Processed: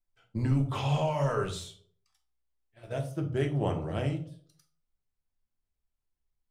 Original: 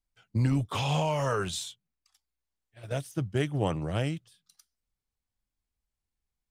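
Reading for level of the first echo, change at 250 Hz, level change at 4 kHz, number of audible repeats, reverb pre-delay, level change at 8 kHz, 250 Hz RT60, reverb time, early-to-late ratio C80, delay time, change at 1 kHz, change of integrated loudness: none, -1.0 dB, -5.5 dB, none, 3 ms, -7.5 dB, 0.60 s, 0.55 s, 15.5 dB, none, -1.5 dB, -0.5 dB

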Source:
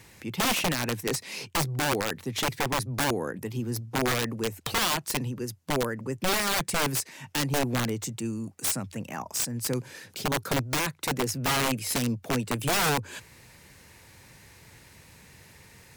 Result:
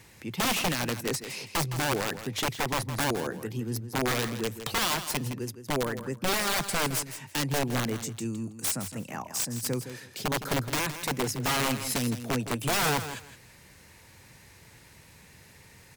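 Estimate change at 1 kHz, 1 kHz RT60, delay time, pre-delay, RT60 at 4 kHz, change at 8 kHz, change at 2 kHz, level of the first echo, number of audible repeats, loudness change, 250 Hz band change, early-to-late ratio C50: -1.0 dB, none, 0.163 s, none, none, -1.0 dB, -1.0 dB, -11.0 dB, 2, -1.0 dB, -1.0 dB, none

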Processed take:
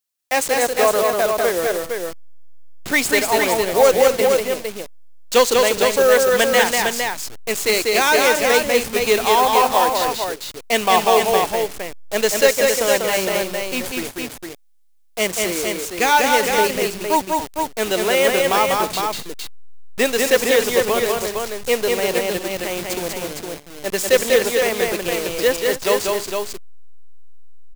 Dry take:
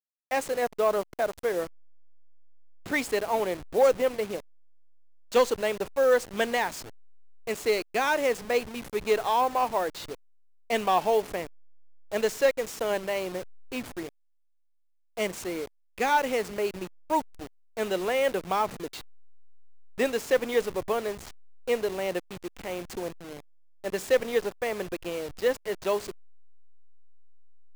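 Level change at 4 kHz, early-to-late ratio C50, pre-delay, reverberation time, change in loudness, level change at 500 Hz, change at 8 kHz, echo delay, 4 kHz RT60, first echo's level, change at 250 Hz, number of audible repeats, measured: +16.0 dB, none, none, none, +10.0 dB, +9.5 dB, +18.0 dB, 0.193 s, none, -3.0 dB, +9.5 dB, 3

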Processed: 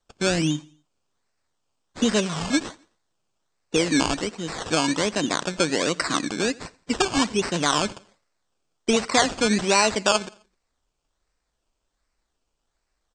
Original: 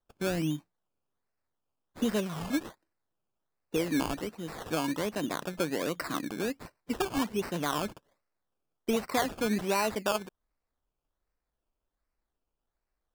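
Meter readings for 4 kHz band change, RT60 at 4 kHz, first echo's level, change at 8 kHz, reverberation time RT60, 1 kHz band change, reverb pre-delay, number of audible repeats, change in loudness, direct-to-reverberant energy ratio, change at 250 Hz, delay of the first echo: +13.5 dB, none, -23.0 dB, +14.0 dB, none, +8.5 dB, none, 2, +9.0 dB, none, +7.0 dB, 86 ms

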